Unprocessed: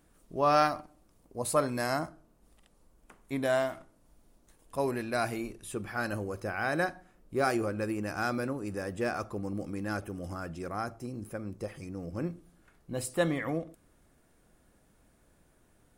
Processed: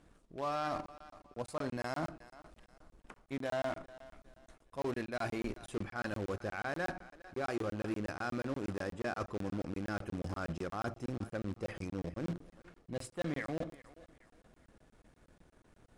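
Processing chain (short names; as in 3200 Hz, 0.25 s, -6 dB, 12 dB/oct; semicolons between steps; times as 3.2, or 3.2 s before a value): reverse; compressor 5:1, threshold -40 dBFS, peak gain reduction 18 dB; reverse; sample leveller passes 1; in parallel at -10 dB: bit-crush 6-bit; on the sum: air absorption 68 m; thinning echo 0.41 s, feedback 36%, high-pass 410 Hz, level -17 dB; crackling interface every 0.12 s, samples 1024, zero, from 0.86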